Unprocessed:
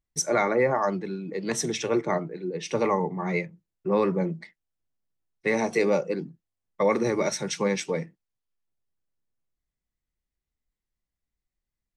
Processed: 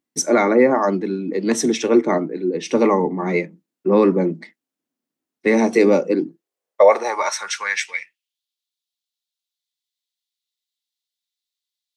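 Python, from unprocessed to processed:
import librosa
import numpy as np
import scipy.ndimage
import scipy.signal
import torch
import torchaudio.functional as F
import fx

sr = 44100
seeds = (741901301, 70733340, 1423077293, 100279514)

y = fx.filter_sweep_highpass(x, sr, from_hz=260.0, to_hz=3700.0, start_s=6.1, end_s=8.43, q=4.0)
y = y * 10.0 ** (5.0 / 20.0)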